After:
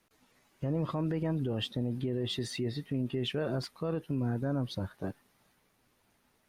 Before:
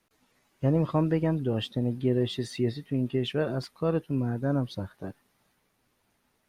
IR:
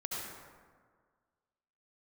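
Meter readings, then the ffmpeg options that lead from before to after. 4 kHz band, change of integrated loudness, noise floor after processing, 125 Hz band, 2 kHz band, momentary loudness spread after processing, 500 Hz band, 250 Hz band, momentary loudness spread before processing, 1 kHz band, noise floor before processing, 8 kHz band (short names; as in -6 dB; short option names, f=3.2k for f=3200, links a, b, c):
0.0 dB, -5.5 dB, -72 dBFS, -5.0 dB, -3.5 dB, 5 LU, -6.5 dB, -5.5 dB, 7 LU, -5.5 dB, -73 dBFS, +0.5 dB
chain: -af "alimiter=level_in=1.5dB:limit=-24dB:level=0:latency=1:release=62,volume=-1.5dB,volume=1dB"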